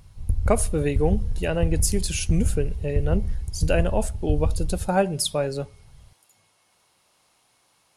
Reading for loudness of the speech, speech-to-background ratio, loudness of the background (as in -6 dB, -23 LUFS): -26.0 LUFS, 3.0 dB, -29.0 LUFS